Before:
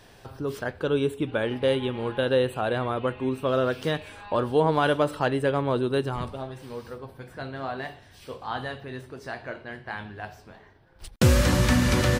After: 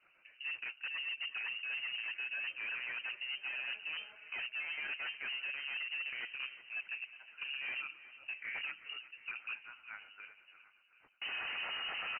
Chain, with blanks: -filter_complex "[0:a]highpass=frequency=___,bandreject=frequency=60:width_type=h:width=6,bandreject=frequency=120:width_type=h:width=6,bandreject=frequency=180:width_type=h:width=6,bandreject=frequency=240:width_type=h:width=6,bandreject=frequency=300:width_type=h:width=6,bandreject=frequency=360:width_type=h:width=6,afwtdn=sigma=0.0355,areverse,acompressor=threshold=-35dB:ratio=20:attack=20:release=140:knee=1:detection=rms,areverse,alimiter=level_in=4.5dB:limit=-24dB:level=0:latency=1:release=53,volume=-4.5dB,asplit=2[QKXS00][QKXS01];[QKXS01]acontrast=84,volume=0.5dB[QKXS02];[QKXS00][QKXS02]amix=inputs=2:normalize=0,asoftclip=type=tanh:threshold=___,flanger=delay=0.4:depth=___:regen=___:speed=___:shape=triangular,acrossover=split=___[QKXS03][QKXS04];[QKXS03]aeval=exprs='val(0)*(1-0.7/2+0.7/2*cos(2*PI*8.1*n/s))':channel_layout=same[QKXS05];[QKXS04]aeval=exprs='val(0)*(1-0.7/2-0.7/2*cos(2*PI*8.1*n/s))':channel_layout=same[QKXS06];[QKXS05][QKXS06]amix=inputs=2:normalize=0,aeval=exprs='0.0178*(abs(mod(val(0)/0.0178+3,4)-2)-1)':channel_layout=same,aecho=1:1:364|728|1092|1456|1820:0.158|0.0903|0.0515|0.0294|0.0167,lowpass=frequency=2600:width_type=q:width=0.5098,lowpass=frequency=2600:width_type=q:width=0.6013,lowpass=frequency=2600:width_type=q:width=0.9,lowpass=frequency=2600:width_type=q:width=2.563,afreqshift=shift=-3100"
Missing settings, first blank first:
260, -24.5dB, 6.6, 75, 0.89, 720